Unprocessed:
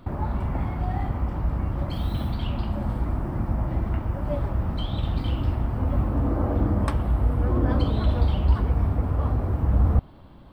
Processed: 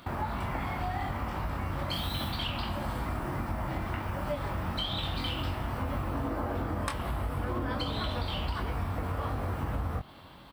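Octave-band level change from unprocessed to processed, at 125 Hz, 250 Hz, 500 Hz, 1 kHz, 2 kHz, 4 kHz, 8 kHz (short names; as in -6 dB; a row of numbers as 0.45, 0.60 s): -10.5 dB, -8.0 dB, -4.5 dB, 0.0 dB, +4.0 dB, +6.5 dB, n/a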